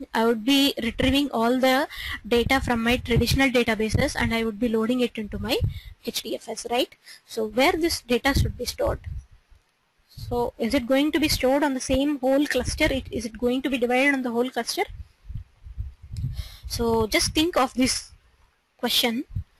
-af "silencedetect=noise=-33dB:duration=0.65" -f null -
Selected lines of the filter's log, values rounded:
silence_start: 9.19
silence_end: 10.18 | silence_duration: 0.99
silence_start: 18.04
silence_end: 18.83 | silence_duration: 0.79